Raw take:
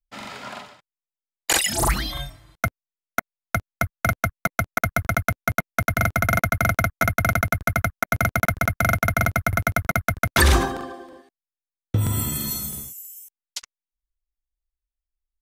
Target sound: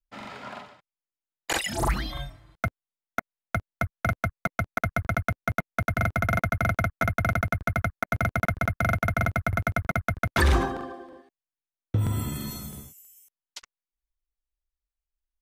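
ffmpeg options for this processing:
ffmpeg -i in.wav -filter_complex "[0:a]highshelf=frequency=3900:gain=-11.5,asplit=2[link_01][link_02];[link_02]asoftclip=type=tanh:threshold=-18dB,volume=-7dB[link_03];[link_01][link_03]amix=inputs=2:normalize=0,volume=-5.5dB" out.wav

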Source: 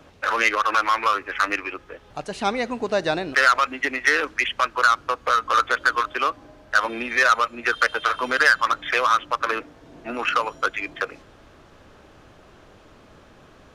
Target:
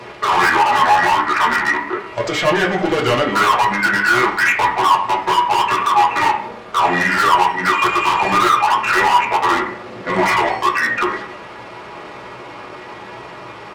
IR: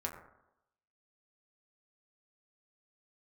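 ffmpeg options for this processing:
-filter_complex "[0:a]asetrate=34006,aresample=44100,atempo=1.29684,asplit=2[link_01][link_02];[link_02]highpass=frequency=720:poles=1,volume=32dB,asoftclip=type=tanh:threshold=-3.5dB[link_03];[link_01][link_03]amix=inputs=2:normalize=0,lowpass=frequency=7600:poles=1,volume=-6dB[link_04];[1:a]atrim=start_sample=2205,asetrate=66150,aresample=44100[link_05];[link_04][link_05]afir=irnorm=-1:irlink=0,volume=-2dB"

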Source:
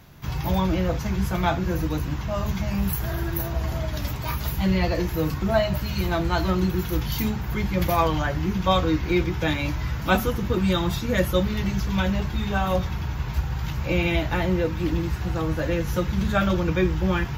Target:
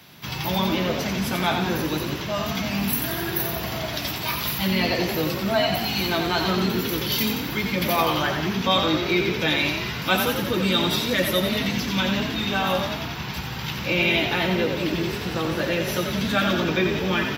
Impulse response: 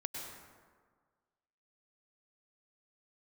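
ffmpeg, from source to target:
-filter_complex "[0:a]highpass=150,equalizer=frequency=3100:width=0.79:gain=5,bandreject=frequency=6700:width=6.8,asplit=2[link_01][link_02];[link_02]alimiter=limit=-18dB:level=0:latency=1,volume=-0.5dB[link_03];[link_01][link_03]amix=inputs=2:normalize=0,asplit=9[link_04][link_05][link_06][link_07][link_08][link_09][link_10][link_11][link_12];[link_05]adelay=89,afreqshift=37,volume=-6dB[link_13];[link_06]adelay=178,afreqshift=74,volume=-10.6dB[link_14];[link_07]adelay=267,afreqshift=111,volume=-15.2dB[link_15];[link_08]adelay=356,afreqshift=148,volume=-19.7dB[link_16];[link_09]adelay=445,afreqshift=185,volume=-24.3dB[link_17];[link_10]adelay=534,afreqshift=222,volume=-28.9dB[link_18];[link_11]adelay=623,afreqshift=259,volume=-33.5dB[link_19];[link_12]adelay=712,afreqshift=296,volume=-38.1dB[link_20];[link_04][link_13][link_14][link_15][link_16][link_17][link_18][link_19][link_20]amix=inputs=9:normalize=0,acrossover=split=220|2500[link_21][link_22][link_23];[link_23]acontrast=24[link_24];[link_21][link_22][link_24]amix=inputs=3:normalize=0,volume=-5dB"

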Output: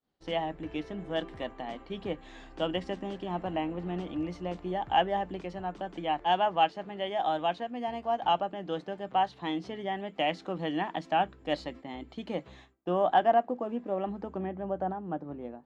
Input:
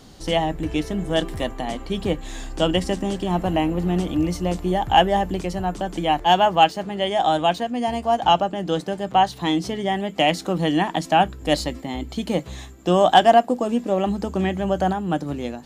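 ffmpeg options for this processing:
ffmpeg -i in.wav -af "asetnsamples=nb_out_samples=441:pad=0,asendcmd='12.74 lowpass f 1800;14.38 lowpass f 1100',lowpass=3000,agate=range=-33dB:threshold=-32dB:ratio=3:detection=peak,lowshelf=frequency=160:gain=-11.5,volume=-9dB" out.wav

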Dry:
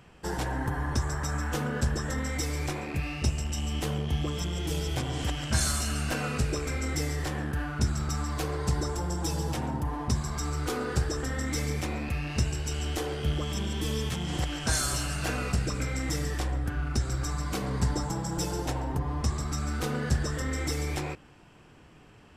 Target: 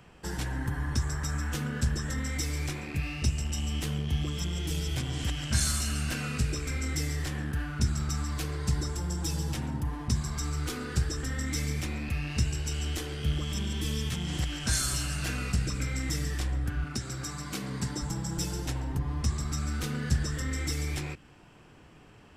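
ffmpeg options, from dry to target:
ffmpeg -i in.wav -filter_complex "[0:a]asettb=1/sr,asplit=3[link_01][link_02][link_03];[link_01]atrim=end=16.844[link_04];[link_02]atrim=start=16.84:end=18.02,asetpts=PTS-STARTPTS,afade=type=in:duration=0.004:curve=qsin,afade=type=out:start_time=1.176:duration=0.004:curve=qsin,highpass=140[link_05];[link_03]atrim=start=18.016[link_06];[link_04][link_05]acrossfade=duration=0.004:curve1=hsin:curve2=qsin[link_07];[link_07][link_06]acrossfade=duration=0.004:curve1=qsin:curve2=hsin,acrossover=split=310|1400[link_08][link_09][link_10];[link_09]acompressor=threshold=-49dB:ratio=4[link_11];[link_08][link_11][link_10]amix=inputs=3:normalize=0" out.wav

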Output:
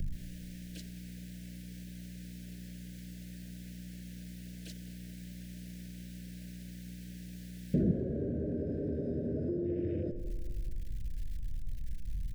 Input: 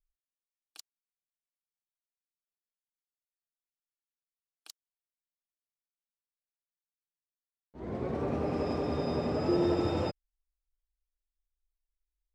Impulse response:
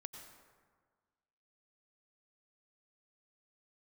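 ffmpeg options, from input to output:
-filter_complex "[0:a]aeval=exprs='val(0)+0.5*0.0211*sgn(val(0))':channel_layout=same,afwtdn=0.01,aeval=exprs='val(0)+0.001*(sin(2*PI*60*n/s)+sin(2*PI*2*60*n/s)/2+sin(2*PI*3*60*n/s)/3+sin(2*PI*4*60*n/s)/4+sin(2*PI*5*60*n/s)/5)':channel_layout=same,acrossover=split=380[link_01][link_02];[link_02]acompressor=threshold=-45dB:ratio=4[link_03];[link_01][link_03]amix=inputs=2:normalize=0,asuperstop=centerf=1000:order=12:qfactor=1.1,highshelf=frequency=4700:gain=-7.5[link_04];[1:a]atrim=start_sample=2205,afade=type=out:start_time=0.14:duration=0.01,atrim=end_sample=6615[link_05];[link_04][link_05]afir=irnorm=-1:irlink=0,acompressor=threshold=-48dB:ratio=5,asetnsamples=nb_out_samples=441:pad=0,asendcmd='7.91 equalizer g -2',equalizer=frequency=170:width_type=o:width=1.3:gain=12,asplit=2[link_06][link_07];[link_07]adelay=206,lowpass=frequency=2000:poles=1,volume=-13.5dB,asplit=2[link_08][link_09];[link_09]adelay=206,lowpass=frequency=2000:poles=1,volume=0.53,asplit=2[link_10][link_11];[link_11]adelay=206,lowpass=frequency=2000:poles=1,volume=0.53,asplit=2[link_12][link_13];[link_13]adelay=206,lowpass=frequency=2000:poles=1,volume=0.53,asplit=2[link_14][link_15];[link_15]adelay=206,lowpass=frequency=2000:poles=1,volume=0.53[link_16];[link_06][link_08][link_10][link_12][link_14][link_16]amix=inputs=6:normalize=0,volume=15dB"

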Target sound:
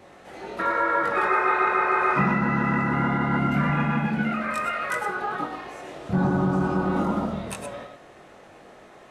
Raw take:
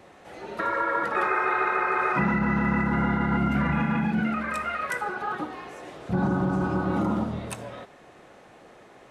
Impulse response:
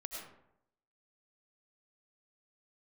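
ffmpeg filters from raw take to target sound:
-filter_complex "[0:a]asplit=2[link_01][link_02];[1:a]atrim=start_sample=2205,afade=type=out:start_time=0.16:duration=0.01,atrim=end_sample=7497,adelay=21[link_03];[link_02][link_03]afir=irnorm=-1:irlink=0,volume=2dB[link_04];[link_01][link_04]amix=inputs=2:normalize=0"

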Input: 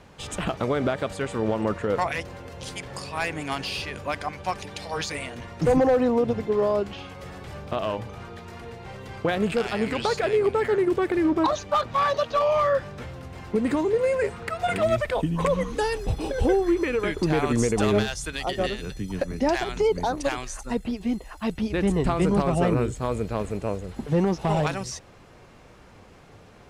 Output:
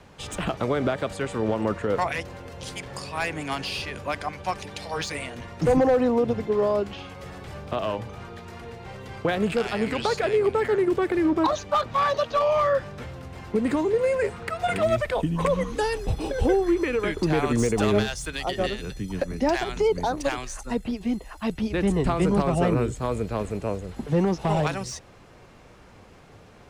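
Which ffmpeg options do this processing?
ffmpeg -i in.wav -filter_complex "[0:a]acrossover=split=320|500|4500[link_01][link_02][link_03][link_04];[link_04]asoftclip=type=hard:threshold=-32.5dB[link_05];[link_01][link_02][link_03][link_05]amix=inputs=4:normalize=0" out.wav

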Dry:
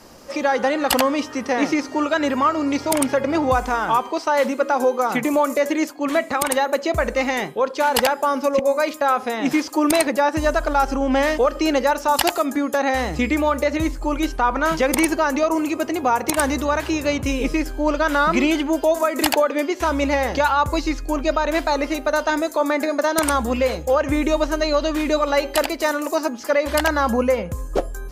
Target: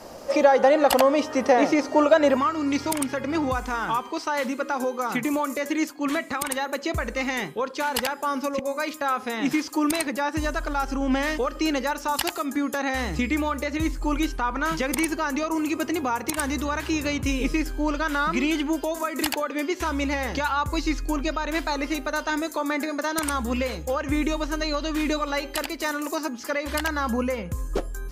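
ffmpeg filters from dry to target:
ffmpeg -i in.wav -af "alimiter=limit=-12.5dB:level=0:latency=1:release=434,asetnsamples=nb_out_samples=441:pad=0,asendcmd='2.37 equalizer g -7.5',equalizer=frequency=630:width_type=o:width=0.98:gain=9" out.wav

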